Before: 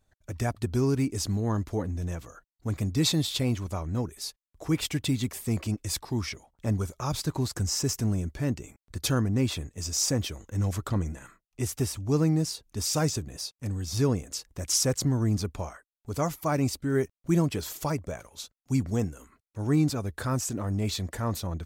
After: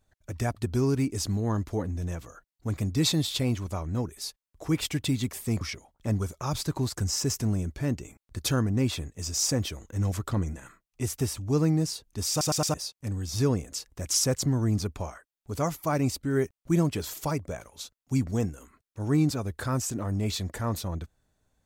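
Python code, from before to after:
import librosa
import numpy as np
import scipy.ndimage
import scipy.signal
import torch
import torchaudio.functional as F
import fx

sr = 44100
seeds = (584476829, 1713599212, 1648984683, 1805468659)

y = fx.edit(x, sr, fx.cut(start_s=5.61, length_s=0.59),
    fx.stutter_over(start_s=12.89, slice_s=0.11, count=4), tone=tone)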